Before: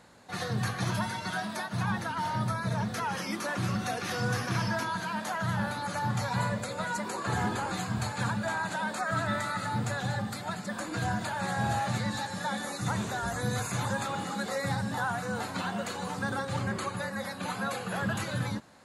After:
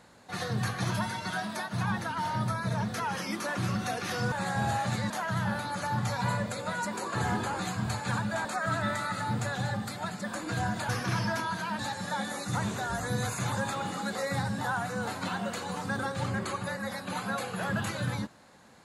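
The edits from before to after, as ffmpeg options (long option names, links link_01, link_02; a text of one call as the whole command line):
ffmpeg -i in.wav -filter_complex "[0:a]asplit=6[link_01][link_02][link_03][link_04][link_05][link_06];[link_01]atrim=end=4.322[link_07];[link_02]atrim=start=11.338:end=12.122[link_08];[link_03]atrim=start=5.218:end=8.572[link_09];[link_04]atrim=start=8.898:end=11.342[link_10];[link_05]atrim=start=4.318:end=5.222[link_11];[link_06]atrim=start=12.118[link_12];[link_07][link_08]acrossfade=duration=0.004:curve1=hsin:curve2=hsin[link_13];[link_13][link_09]acrossfade=duration=0.004:curve1=hsin:curve2=hsin[link_14];[link_14][link_10]acrossfade=duration=0.004:curve1=hsin:curve2=hsin[link_15];[link_15][link_11]acrossfade=duration=0.004:curve1=hsin:curve2=hsin[link_16];[link_16][link_12]acrossfade=duration=0.004:curve1=hsin:curve2=hsin" out.wav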